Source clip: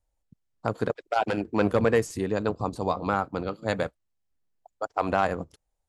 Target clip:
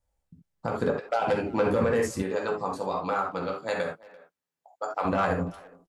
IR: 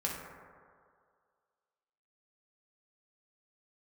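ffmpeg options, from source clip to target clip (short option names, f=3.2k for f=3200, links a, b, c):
-filter_complex "[1:a]atrim=start_sample=2205,atrim=end_sample=3969[a];[0:a][a]afir=irnorm=-1:irlink=0,alimiter=limit=-15dB:level=0:latency=1:release=88,asettb=1/sr,asplit=3[b][c][d];[b]atrim=end=2.224[e];[c]atrim=start=2.22:end=5.05,asetpts=PTS-STARTPTS,afade=t=in:d=0.004:c=qsin,afade=t=out:st=2.826:d=0.004:c=qsin,highpass=f=510:p=1[f];[d]atrim=start=5.046[g];[e][f]acrossfade=d=0.004:c1=hsin:c2=qsin[h];[h][g]acrossfade=d=0.004:c1=qsin:c2=hsin,asplit=2[i][j];[j]adelay=340,highpass=300,lowpass=3.4k,asoftclip=type=hard:threshold=-23.5dB,volume=-20dB[k];[i][k]amix=inputs=2:normalize=0"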